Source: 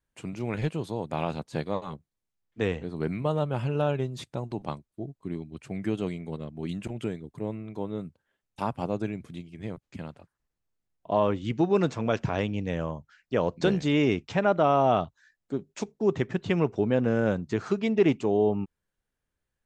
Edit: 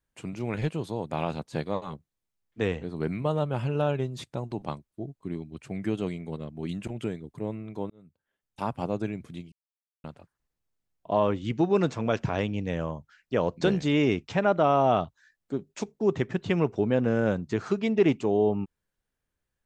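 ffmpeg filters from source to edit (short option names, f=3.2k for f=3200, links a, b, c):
-filter_complex "[0:a]asplit=4[a][b][c][d];[a]atrim=end=7.9,asetpts=PTS-STARTPTS,afade=t=out:st=7.896:d=0.004:c=hsin[e];[b]atrim=start=7.9:end=9.52,asetpts=PTS-STARTPTS,afade=t=in:d=0.84,afade=t=out:st=1.616:d=0.004:c=hsin[f];[c]atrim=start=9.52:end=10.04,asetpts=PTS-STARTPTS,volume=0[g];[d]atrim=start=10.04,asetpts=PTS-STARTPTS,afade=t=in:d=0.004:c=hsin[h];[e][f][g][h]concat=n=4:v=0:a=1"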